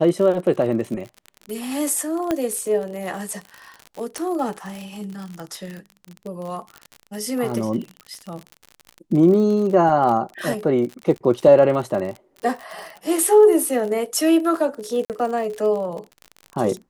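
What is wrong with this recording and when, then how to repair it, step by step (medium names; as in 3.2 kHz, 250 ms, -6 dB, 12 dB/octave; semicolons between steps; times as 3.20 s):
crackle 48 per s -28 dBFS
2.31 s: pop -9 dBFS
4.18 s: pop -14 dBFS
15.05–15.10 s: dropout 48 ms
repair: de-click; interpolate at 15.05 s, 48 ms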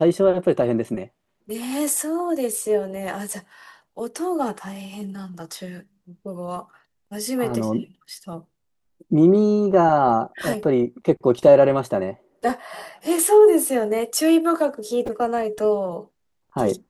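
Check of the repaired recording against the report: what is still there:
nothing left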